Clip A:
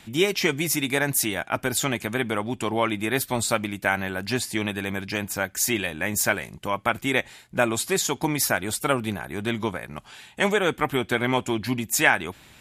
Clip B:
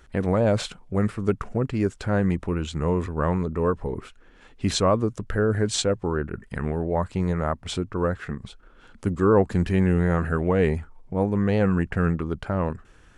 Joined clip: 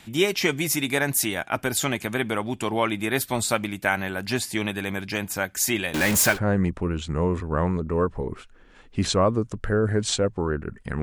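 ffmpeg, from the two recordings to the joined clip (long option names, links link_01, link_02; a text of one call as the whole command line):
ffmpeg -i cue0.wav -i cue1.wav -filter_complex "[0:a]asettb=1/sr,asplit=3[link_01][link_02][link_03];[link_01]atrim=end=5.944[link_04];[link_02]atrim=start=5.94:end=6.39,asetpts=PTS-STARTPTS,afade=type=in:duration=0.004:curve=qsin,afade=type=out:start_time=0.446:duration=0.004:curve=qsin,aeval=exprs='val(0)+0.5*0.1*sgn(val(0))':channel_layout=same[link_05];[link_03]atrim=start=6.386[link_06];[link_04][link_05]acrossfade=duration=0.004:curve1=hsin:curve2=qsin[link_07];[link_07][link_06]acrossfade=duration=0.004:curve1=qsin:curve2=hsin,apad=whole_dur=11.02,atrim=end=11.02,atrim=end=6.39,asetpts=PTS-STARTPTS[link_08];[1:a]atrim=start=1.95:end=6.68,asetpts=PTS-STARTPTS[link_09];[link_08][link_09]acrossfade=duration=0.1:curve1=tri:curve2=tri" out.wav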